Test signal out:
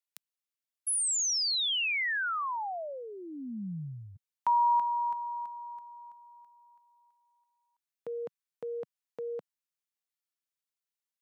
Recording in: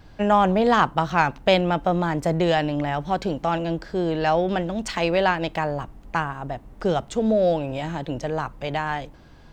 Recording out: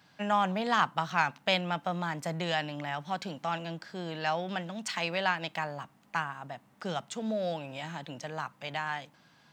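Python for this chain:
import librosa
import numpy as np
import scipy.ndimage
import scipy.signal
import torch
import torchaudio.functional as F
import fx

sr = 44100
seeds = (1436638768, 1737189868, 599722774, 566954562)

y = scipy.signal.sosfilt(scipy.signal.butter(4, 160.0, 'highpass', fs=sr, output='sos'), x)
y = fx.peak_eq(y, sr, hz=380.0, db=-14.0, octaves=1.8)
y = F.gain(torch.from_numpy(y), -3.5).numpy()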